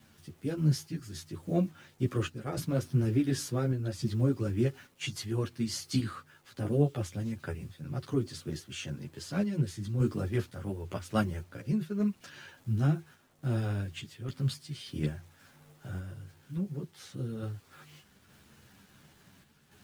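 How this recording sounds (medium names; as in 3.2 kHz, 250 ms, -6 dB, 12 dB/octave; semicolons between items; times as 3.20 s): a quantiser's noise floor 10-bit, dither none; random-step tremolo; a shimmering, thickened sound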